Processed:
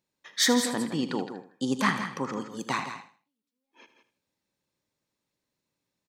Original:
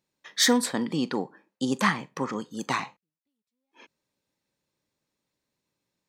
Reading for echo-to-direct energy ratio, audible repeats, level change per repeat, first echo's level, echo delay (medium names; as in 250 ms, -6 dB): -8.0 dB, 4, no regular repeats, -12.5 dB, 78 ms